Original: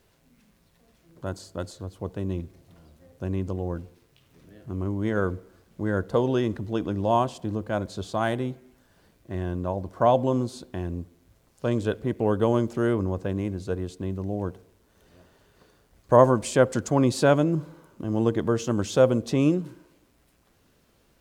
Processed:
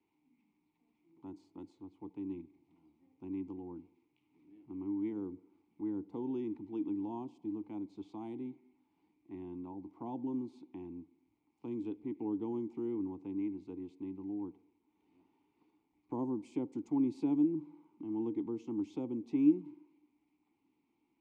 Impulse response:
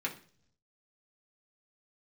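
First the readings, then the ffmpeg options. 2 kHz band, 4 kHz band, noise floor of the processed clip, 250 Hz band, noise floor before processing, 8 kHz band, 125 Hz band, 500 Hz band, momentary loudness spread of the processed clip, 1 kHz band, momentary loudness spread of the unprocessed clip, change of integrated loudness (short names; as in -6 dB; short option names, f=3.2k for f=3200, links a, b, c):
under -30 dB, under -25 dB, -79 dBFS, -7.5 dB, -64 dBFS, under -30 dB, -23.5 dB, -20.0 dB, 18 LU, -22.5 dB, 16 LU, -12.5 dB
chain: -filter_complex "[0:a]acrossover=split=280|630|4200[a][b][c][d];[c]acompressor=threshold=-42dB:ratio=4[e];[a][b][e][d]amix=inputs=4:normalize=0,asplit=3[f][g][h];[f]bandpass=f=300:t=q:w=8,volume=0dB[i];[g]bandpass=f=870:t=q:w=8,volume=-6dB[j];[h]bandpass=f=2.24k:t=q:w=8,volume=-9dB[k];[i][j][k]amix=inputs=3:normalize=0,volume=-1.5dB"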